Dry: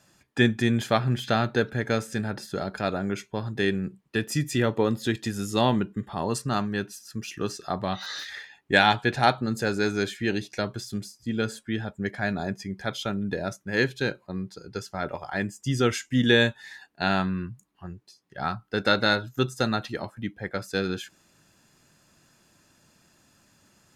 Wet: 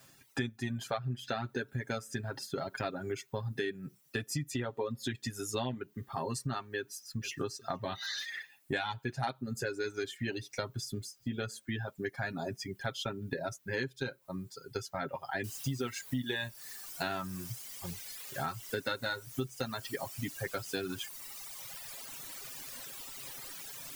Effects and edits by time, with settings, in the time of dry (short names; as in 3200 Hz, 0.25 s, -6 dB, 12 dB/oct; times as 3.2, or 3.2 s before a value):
6.75–7.5 echo throw 0.46 s, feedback 15%, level -16.5 dB
15.44 noise floor step -63 dB -42 dB
whole clip: comb 7.5 ms, depth 66%; reverb removal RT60 1.8 s; compressor 6:1, threshold -31 dBFS; gain -1.5 dB